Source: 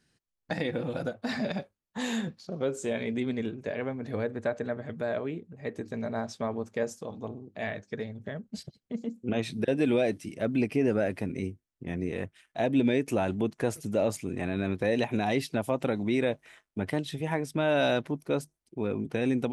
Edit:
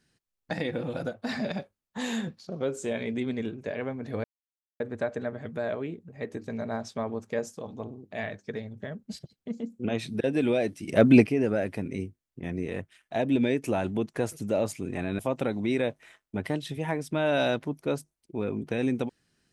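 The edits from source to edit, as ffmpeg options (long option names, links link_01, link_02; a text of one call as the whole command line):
ffmpeg -i in.wav -filter_complex "[0:a]asplit=5[link_01][link_02][link_03][link_04][link_05];[link_01]atrim=end=4.24,asetpts=PTS-STARTPTS,afade=type=out:start_time=4.236:duration=0.004:curve=hsin,apad=pad_dur=0.56[link_06];[link_02]atrim=start=4.24:end=10.322,asetpts=PTS-STARTPTS,afade=type=in:duration=0.004:curve=hsin[link_07];[link_03]atrim=start=10.318:end=10.712,asetpts=PTS-STARTPTS,volume=10.5dB[link_08];[link_04]atrim=start=10.708:end=14.632[link_09];[link_05]atrim=start=15.618[link_10];[link_06][link_07]concat=n=2:v=0:a=1[link_11];[link_11][link_08]acrossfade=duration=0.004:curve1=hsin:curve2=hsin[link_12];[link_12][link_09]acrossfade=duration=0.004:curve1=hsin:curve2=hsin[link_13];[link_13][link_10]acrossfade=duration=0.004:curve1=hsin:curve2=hsin" out.wav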